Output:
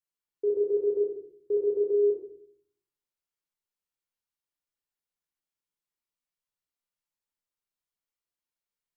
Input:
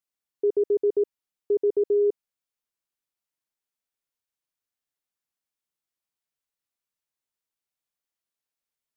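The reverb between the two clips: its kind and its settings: simulated room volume 760 m³, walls furnished, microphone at 4.5 m; trim -10 dB

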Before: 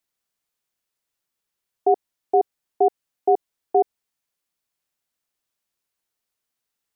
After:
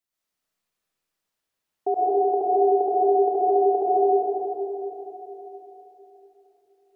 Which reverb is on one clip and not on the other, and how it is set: algorithmic reverb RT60 3.8 s, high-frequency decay 0.55×, pre-delay 75 ms, DRR -9.5 dB; trim -7 dB

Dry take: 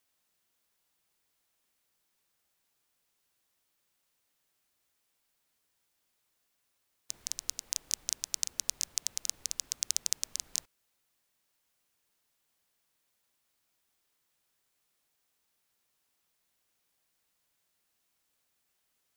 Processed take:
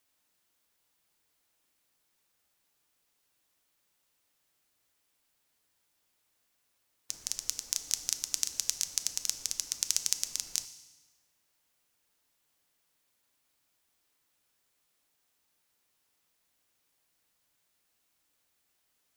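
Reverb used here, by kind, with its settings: FDN reverb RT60 1.2 s, low-frequency decay 1.3×, high-frequency decay 0.95×, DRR 10 dB; trim +1.5 dB

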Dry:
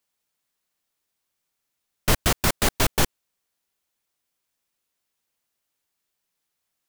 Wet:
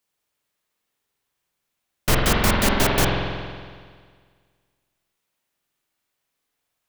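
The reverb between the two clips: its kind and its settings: spring tank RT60 1.8 s, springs 46 ms, chirp 35 ms, DRR -2 dB

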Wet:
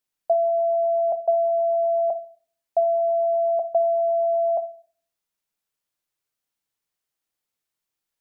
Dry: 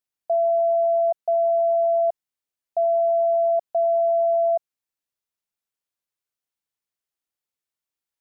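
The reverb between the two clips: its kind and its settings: simulated room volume 350 m³, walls furnished, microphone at 0.52 m; trim +4 dB

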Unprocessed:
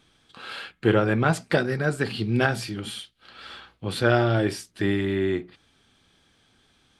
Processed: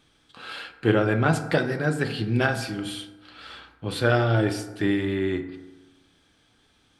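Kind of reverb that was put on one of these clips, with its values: FDN reverb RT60 1.2 s, low-frequency decay 0.95×, high-frequency decay 0.4×, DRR 7.5 dB; trim -1 dB

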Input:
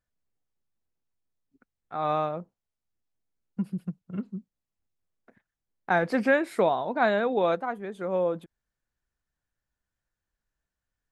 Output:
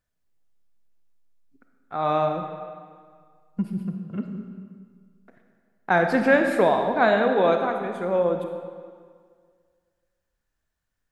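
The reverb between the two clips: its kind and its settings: algorithmic reverb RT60 1.9 s, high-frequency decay 0.8×, pre-delay 5 ms, DRR 4.5 dB; trim +3.5 dB

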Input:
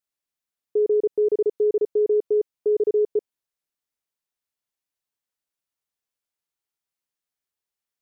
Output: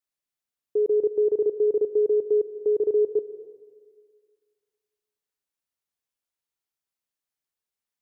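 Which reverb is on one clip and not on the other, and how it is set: plate-style reverb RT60 1.8 s, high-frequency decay 0.8×, pre-delay 115 ms, DRR 12.5 dB; trim -2 dB

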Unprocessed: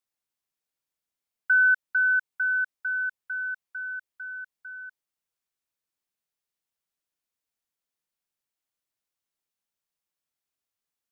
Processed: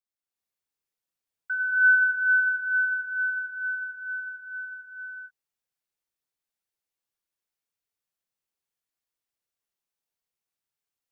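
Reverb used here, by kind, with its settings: gated-style reverb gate 420 ms rising, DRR -7.5 dB; trim -9.5 dB

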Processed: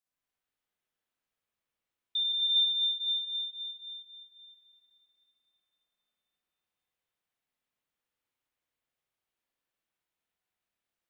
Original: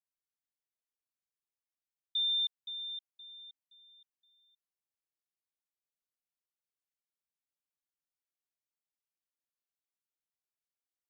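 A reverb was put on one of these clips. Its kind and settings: spring tank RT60 3.2 s, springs 52/56 ms, chirp 60 ms, DRR -8 dB; trim +1.5 dB

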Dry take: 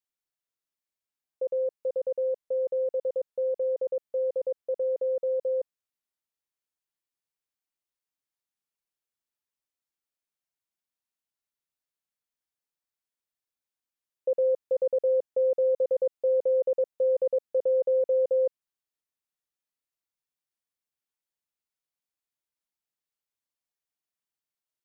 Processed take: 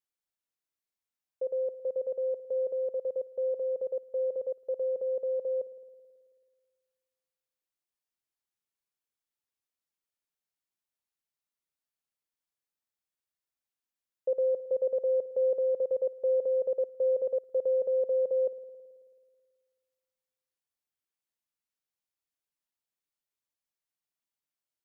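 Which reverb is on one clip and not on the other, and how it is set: spring tank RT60 1.8 s, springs 54 ms, chirp 45 ms, DRR 13.5 dB; trim -2.5 dB

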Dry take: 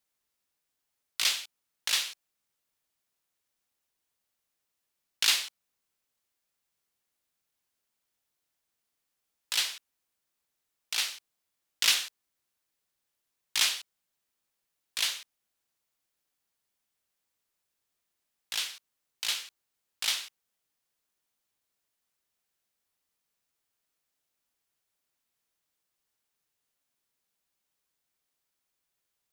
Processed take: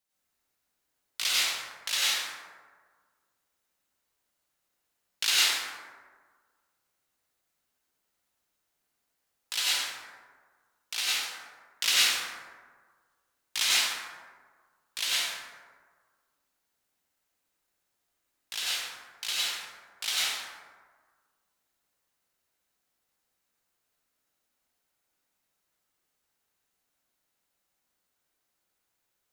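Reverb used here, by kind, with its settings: plate-style reverb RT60 1.6 s, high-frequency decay 0.4×, pre-delay 80 ms, DRR -8 dB; trim -3.5 dB

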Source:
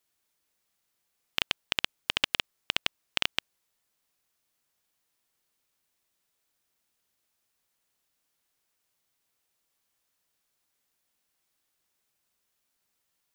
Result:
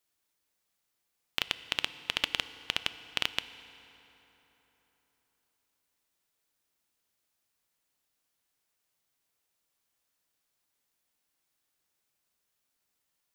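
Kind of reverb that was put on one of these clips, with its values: FDN reverb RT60 3.9 s, high-frequency decay 0.65×, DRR 12.5 dB; trim -2.5 dB

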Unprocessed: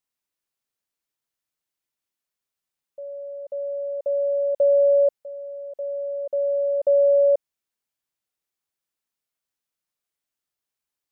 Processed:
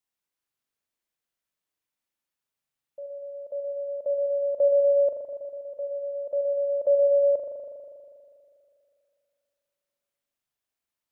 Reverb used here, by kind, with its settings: spring tank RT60 2.5 s, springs 40 ms, chirp 50 ms, DRR 0.5 dB; trim -2.5 dB

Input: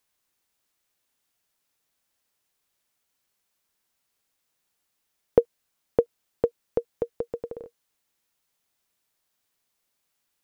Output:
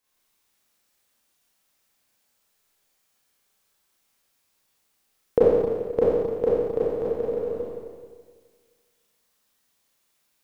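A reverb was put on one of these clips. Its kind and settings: Schroeder reverb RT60 1.7 s, combs from 29 ms, DRR -9.5 dB; trim -3.5 dB

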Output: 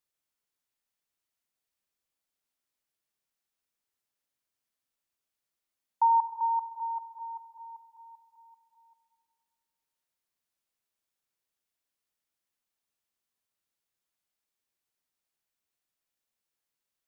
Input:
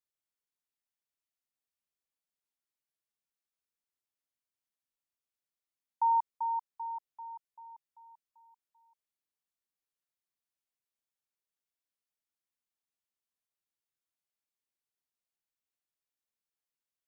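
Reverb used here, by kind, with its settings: algorithmic reverb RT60 2.1 s, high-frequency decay 0.6×, pre-delay 5 ms, DRR 10 dB; trim +5 dB

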